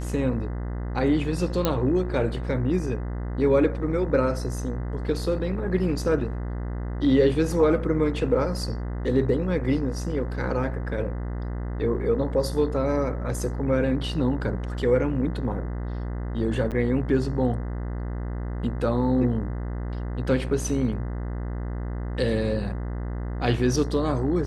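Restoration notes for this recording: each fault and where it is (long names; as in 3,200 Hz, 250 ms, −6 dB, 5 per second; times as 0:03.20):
mains buzz 60 Hz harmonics 34 −30 dBFS
0:01.65: click −7 dBFS
0:16.71–0:16.72: drop-out 7.8 ms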